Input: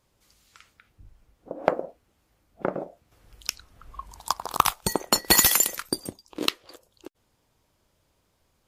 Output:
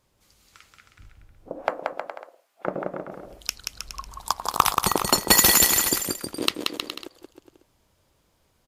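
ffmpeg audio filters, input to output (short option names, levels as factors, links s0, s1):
-filter_complex "[0:a]asplit=3[s0][s1][s2];[s0]afade=t=out:st=1.61:d=0.02[s3];[s1]highpass=800,afade=t=in:st=1.61:d=0.02,afade=t=out:st=2.65:d=0.02[s4];[s2]afade=t=in:st=2.65:d=0.02[s5];[s3][s4][s5]amix=inputs=3:normalize=0,aecho=1:1:180|315|416.2|492.2|549.1:0.631|0.398|0.251|0.158|0.1,volume=1.12"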